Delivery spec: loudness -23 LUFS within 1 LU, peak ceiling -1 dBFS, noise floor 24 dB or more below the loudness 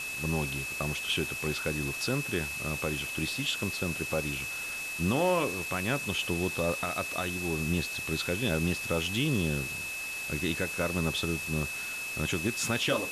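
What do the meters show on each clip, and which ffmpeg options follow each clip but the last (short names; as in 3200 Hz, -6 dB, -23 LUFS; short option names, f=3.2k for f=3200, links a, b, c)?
steady tone 2600 Hz; tone level -35 dBFS; noise floor -37 dBFS; noise floor target -55 dBFS; loudness -30.5 LUFS; peak -16.0 dBFS; loudness target -23.0 LUFS
-> -af "bandreject=f=2.6k:w=30"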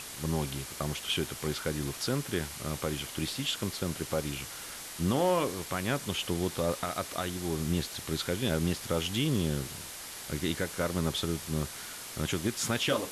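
steady tone none; noise floor -43 dBFS; noise floor target -57 dBFS
-> -af "afftdn=nr=14:nf=-43"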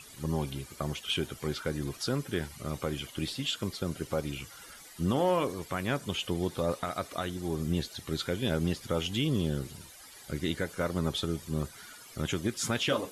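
noise floor -51 dBFS; noise floor target -57 dBFS
-> -af "afftdn=nr=6:nf=-51"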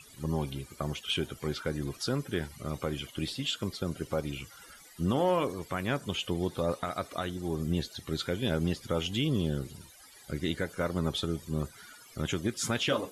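noise floor -54 dBFS; noise floor target -57 dBFS
-> -af "afftdn=nr=6:nf=-54"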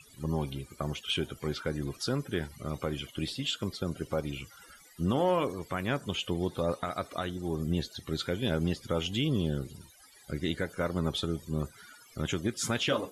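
noise floor -57 dBFS; loudness -33.0 LUFS; peak -16.5 dBFS; loudness target -23.0 LUFS
-> -af "volume=10dB"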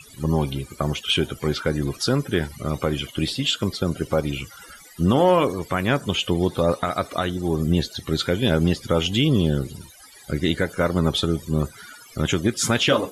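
loudness -23.0 LUFS; peak -6.5 dBFS; noise floor -47 dBFS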